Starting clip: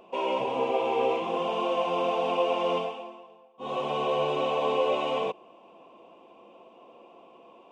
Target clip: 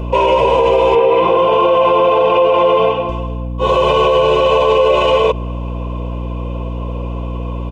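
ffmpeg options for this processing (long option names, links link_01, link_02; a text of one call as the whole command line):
ffmpeg -i in.wav -filter_complex "[0:a]aecho=1:1:2:0.81,aeval=exprs='val(0)+0.0112*(sin(2*PI*60*n/s)+sin(2*PI*2*60*n/s)/2+sin(2*PI*3*60*n/s)/3+sin(2*PI*4*60*n/s)/4+sin(2*PI*5*60*n/s)/5)':channel_layout=same,asettb=1/sr,asplit=3[link_01][link_02][link_03];[link_01]atrim=end=0.954[link_04];[link_02]atrim=start=0.95:end=3.09,asetpts=PTS-STARTPTS,afade=type=in:duration=0.004:curve=qsin,afade=type=out:start_time=2.136:duration=0.004:curve=qsin,highpass=130,lowpass=2900[link_05];[link_03]atrim=start=3.086[link_06];[link_04][link_05]acrossfade=duration=0.004:curve1=hsin:curve2=qsin[link_07];[link_07][link_06]acrossfade=duration=0.004:curve1=qsin:curve2=hsin,alimiter=level_in=21.5dB:limit=-1dB:release=50:level=0:latency=1,volume=-3dB" out.wav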